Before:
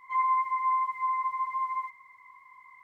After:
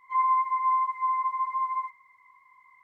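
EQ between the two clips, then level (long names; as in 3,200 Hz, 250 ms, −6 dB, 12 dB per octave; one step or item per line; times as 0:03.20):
dynamic equaliser 1,100 Hz, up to +7 dB, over −40 dBFS, Q 1.3
−4.5 dB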